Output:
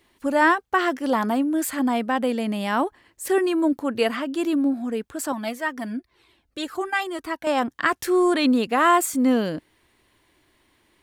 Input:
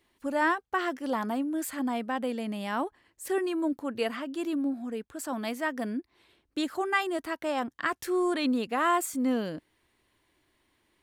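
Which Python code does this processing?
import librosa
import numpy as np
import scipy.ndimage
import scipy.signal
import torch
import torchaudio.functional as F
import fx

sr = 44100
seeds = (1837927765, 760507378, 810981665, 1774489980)

y = fx.comb_cascade(x, sr, direction='falling', hz=2.0, at=(5.32, 7.47))
y = y * 10.0 ** (8.0 / 20.0)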